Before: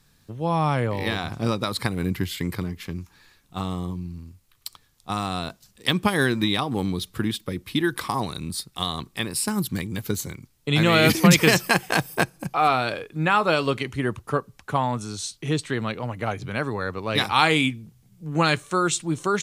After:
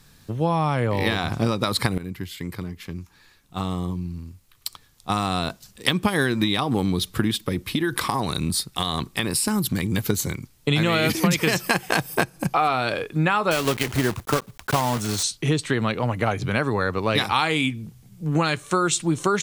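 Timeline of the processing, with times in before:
1.98–5.91 fade in, from -16 dB
7.37–9.84 compressor, threshold -25 dBFS
13.51–15.25 block floating point 3-bit
whole clip: compressor 6:1, threshold -25 dBFS; gain +7.5 dB

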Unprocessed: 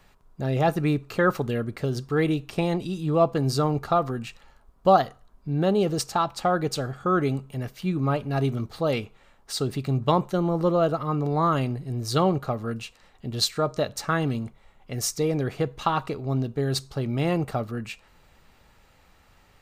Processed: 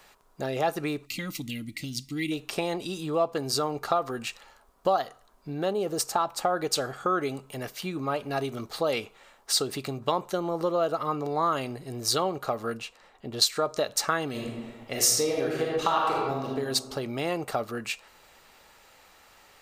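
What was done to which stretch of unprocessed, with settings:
1.06–2.32 spectral gain 340–1900 Hz -24 dB
5.73–6.57 bell 3800 Hz -6.5 dB 2.2 oct
12.77–13.42 high shelf 2800 Hz -10.5 dB
14.3–16.52 reverb throw, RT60 1.3 s, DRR -2 dB
whole clip: compressor 4:1, threshold -26 dBFS; tone controls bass -15 dB, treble +4 dB; gain +4.5 dB

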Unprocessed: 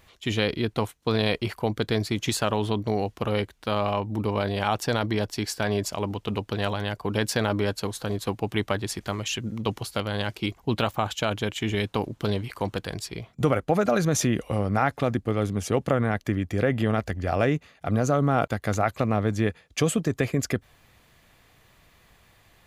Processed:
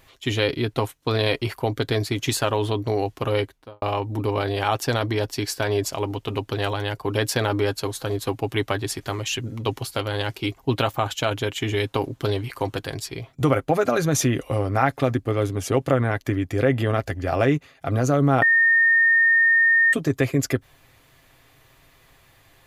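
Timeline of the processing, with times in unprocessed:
3.38–3.82 studio fade out
18.42–19.93 bleep 1830 Hz -15 dBFS
whole clip: comb 7.5 ms, depth 39%; de-esser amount 25%; thirty-one-band EQ 200 Hz -10 dB, 315 Hz +4 dB, 12500 Hz +4 dB; gain +2 dB

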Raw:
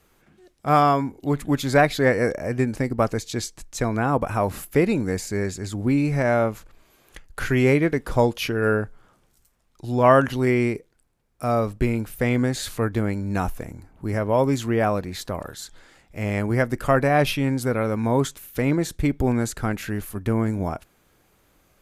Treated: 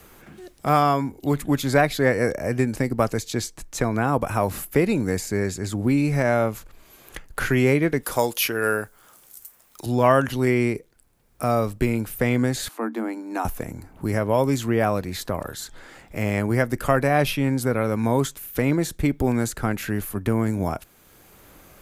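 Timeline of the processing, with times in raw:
8.03–9.86 RIAA curve recording
12.68–13.45 rippled Chebyshev high-pass 220 Hz, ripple 9 dB
whole clip: high shelf 12000 Hz +10.5 dB; three-band squash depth 40%

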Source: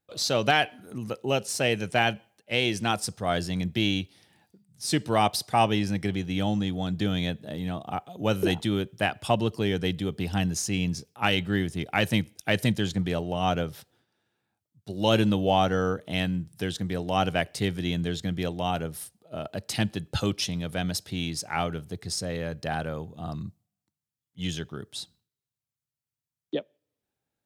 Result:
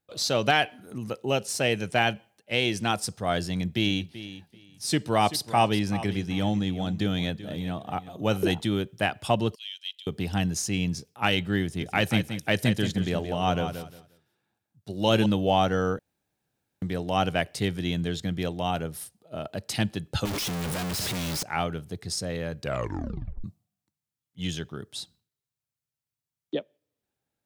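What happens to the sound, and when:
3.46–8.43 feedback echo 0.384 s, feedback 19%, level -14.5 dB
9.55–10.07 ladder high-pass 2800 Hz, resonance 65%
11.63–15.26 feedback echo 0.177 s, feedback 22%, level -9 dB
15.99–16.82 room tone
20.25–21.43 infinite clipping
22.59 tape stop 0.85 s

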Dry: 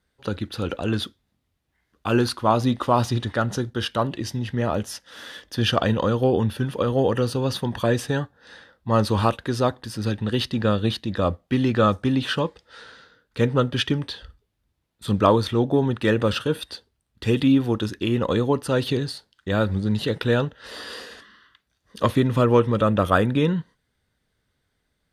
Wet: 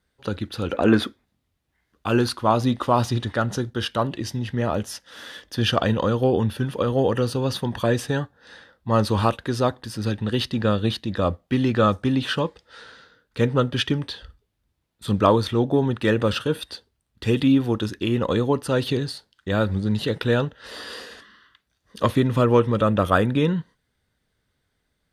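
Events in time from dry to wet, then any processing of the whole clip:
0.74–1.25 spectral gain 210–2600 Hz +9 dB

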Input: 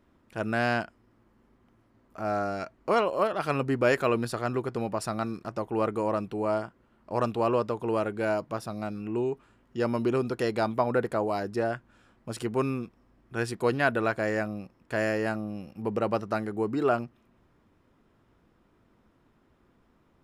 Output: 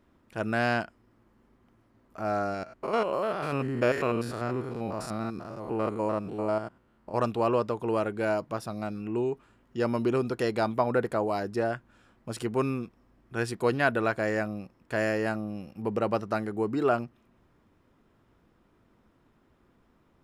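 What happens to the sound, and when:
2.54–7.14 stepped spectrum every 0.1 s

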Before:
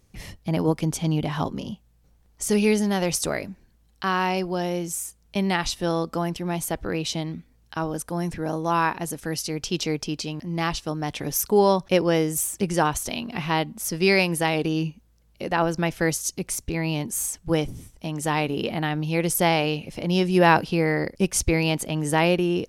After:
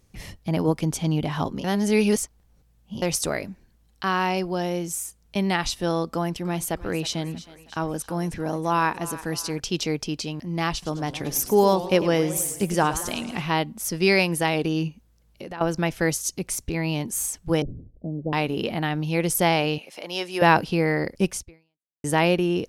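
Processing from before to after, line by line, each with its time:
1.64–3.02 reverse
6.13–9.6 thinning echo 0.317 s, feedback 52%, level -15.5 dB
10.71–13.42 warbling echo 0.107 s, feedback 58%, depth 213 cents, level -13.5 dB
14.88–15.61 compressor 4:1, threshold -33 dBFS
17.62–18.33 steep low-pass 600 Hz
19.78–20.42 HPF 580 Hz
21.31–22.04 fade out exponential

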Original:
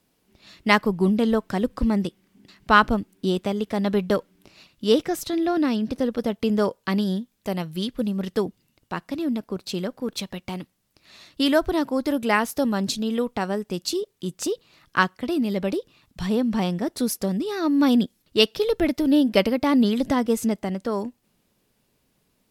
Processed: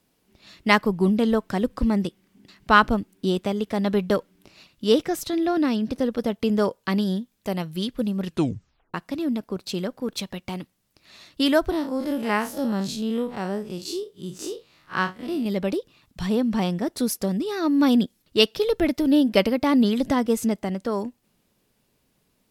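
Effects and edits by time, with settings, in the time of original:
8.24 tape stop 0.70 s
11.7–15.46 time blur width 92 ms

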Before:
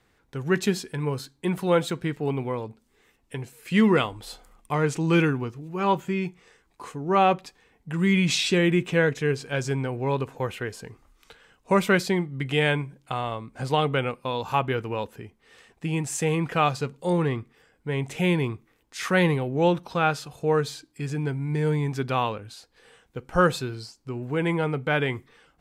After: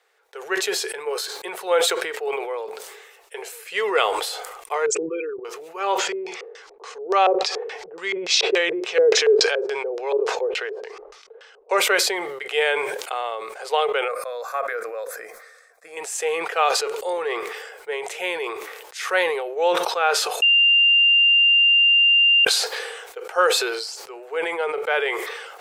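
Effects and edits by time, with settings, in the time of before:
4.86–5.45 formant sharpening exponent 3
5.98–11.77 LFO low-pass square 3.5 Hz 430–5300 Hz
14.08–15.97 fixed phaser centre 590 Hz, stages 8
20.42–22.45 bleep 2790 Hz -14.5 dBFS
whole clip: elliptic high-pass 420 Hz, stop band 40 dB; notch 1000 Hz, Q 14; sustainer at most 39 dB/s; gain +3 dB

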